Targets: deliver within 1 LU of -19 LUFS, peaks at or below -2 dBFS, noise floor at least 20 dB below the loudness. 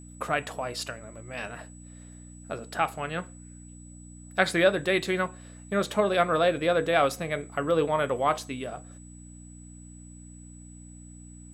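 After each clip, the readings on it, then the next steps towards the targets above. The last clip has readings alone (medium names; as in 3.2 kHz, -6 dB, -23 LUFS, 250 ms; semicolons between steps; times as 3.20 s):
hum 60 Hz; highest harmonic 300 Hz; hum level -44 dBFS; steady tone 7.9 kHz; tone level -52 dBFS; loudness -27.5 LUFS; peak level -6.5 dBFS; loudness target -19.0 LUFS
-> de-hum 60 Hz, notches 5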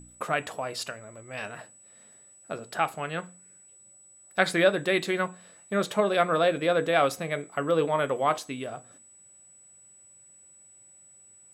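hum not found; steady tone 7.9 kHz; tone level -52 dBFS
-> band-stop 7.9 kHz, Q 30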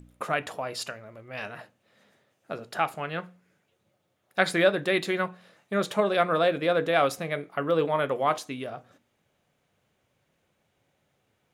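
steady tone not found; loudness -27.0 LUFS; peak level -6.5 dBFS; loudness target -19.0 LUFS
-> trim +8 dB; peak limiter -2 dBFS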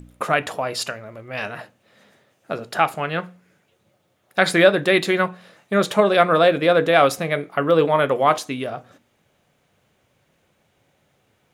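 loudness -19.5 LUFS; peak level -2.0 dBFS; noise floor -66 dBFS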